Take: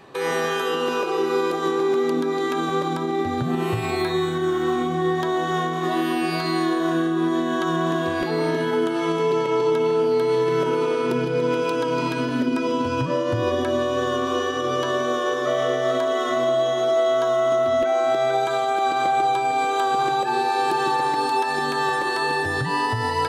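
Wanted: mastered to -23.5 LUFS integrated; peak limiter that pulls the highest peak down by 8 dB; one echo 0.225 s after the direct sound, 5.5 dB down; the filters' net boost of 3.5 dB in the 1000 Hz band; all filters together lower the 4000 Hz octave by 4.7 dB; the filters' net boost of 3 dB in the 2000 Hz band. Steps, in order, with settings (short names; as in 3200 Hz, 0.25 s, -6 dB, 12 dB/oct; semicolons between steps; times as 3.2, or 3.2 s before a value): bell 1000 Hz +4 dB; bell 2000 Hz +4 dB; bell 4000 Hz -8 dB; limiter -17 dBFS; echo 0.225 s -5.5 dB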